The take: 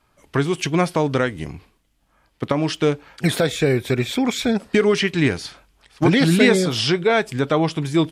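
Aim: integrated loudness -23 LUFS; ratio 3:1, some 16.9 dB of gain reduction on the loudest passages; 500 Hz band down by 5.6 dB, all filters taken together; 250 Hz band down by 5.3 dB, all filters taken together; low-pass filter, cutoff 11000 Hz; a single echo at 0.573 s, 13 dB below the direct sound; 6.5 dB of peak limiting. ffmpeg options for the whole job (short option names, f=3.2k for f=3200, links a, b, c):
-af "lowpass=11k,equalizer=f=250:t=o:g=-6,equalizer=f=500:t=o:g=-5,acompressor=threshold=-38dB:ratio=3,alimiter=level_in=3dB:limit=-24dB:level=0:latency=1,volume=-3dB,aecho=1:1:573:0.224,volume=15dB"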